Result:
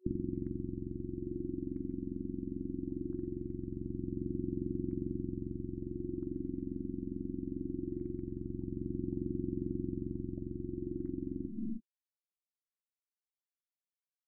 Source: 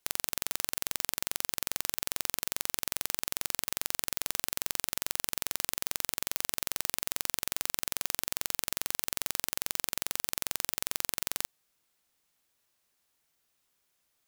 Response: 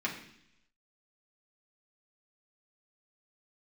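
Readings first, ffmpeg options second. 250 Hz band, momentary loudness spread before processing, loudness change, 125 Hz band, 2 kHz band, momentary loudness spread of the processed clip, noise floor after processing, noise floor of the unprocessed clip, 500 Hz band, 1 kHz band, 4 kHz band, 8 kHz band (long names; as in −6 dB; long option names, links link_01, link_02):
+15.5 dB, 0 LU, −7.5 dB, +12.5 dB, below −40 dB, 4 LU, below −85 dBFS, −76 dBFS, +5.0 dB, below −40 dB, below −40 dB, below −40 dB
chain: -filter_complex "[0:a]asplit=2[link_01][link_02];[1:a]atrim=start_sample=2205,afade=type=out:start_time=0.38:duration=0.01,atrim=end_sample=17199[link_03];[link_02][link_03]afir=irnorm=-1:irlink=0,volume=-6dB[link_04];[link_01][link_04]amix=inputs=2:normalize=0,afftfilt=real='re*gte(hypot(re,im),0.002)':imag='im*gte(hypot(re,im),0.002)':win_size=1024:overlap=0.75,areverse,acompressor=mode=upward:threshold=-46dB:ratio=2.5,areverse,equalizer=frequency=160:width_type=o:width=0.33:gain=-4,equalizer=frequency=630:width_type=o:width=0.33:gain=10,equalizer=frequency=6300:width_type=o:width=0.33:gain=-8,acrossover=split=640|2900[link_05][link_06][link_07];[link_05]acompressor=threshold=-49dB:ratio=4[link_08];[link_06]acompressor=threshold=-39dB:ratio=4[link_09];[link_07]acompressor=threshold=-40dB:ratio=4[link_10];[link_08][link_09][link_10]amix=inputs=3:normalize=0,asplit=2[link_11][link_12];[link_12]adelay=26,volume=-12dB[link_13];[link_11][link_13]amix=inputs=2:normalize=0,afftfilt=real='re*(1-between(b*sr/4096,370,11000))':imag='im*(1-between(b*sr/4096,370,11000))':win_size=4096:overlap=0.75,aphaser=in_gain=1:out_gain=1:delay=4.2:decay=0.29:speed=0.21:type=sinusoidal,aresample=32000,aresample=44100,equalizer=frequency=6300:width_type=o:width=2:gain=5,afftfilt=real='re*lt(b*sr/1024,640*pow(2500/640,0.5+0.5*sin(2*PI*0.64*pts/sr)))':imag='im*lt(b*sr/1024,640*pow(2500/640,0.5+0.5*sin(2*PI*0.64*pts/sr)))':win_size=1024:overlap=0.75,volume=17.5dB"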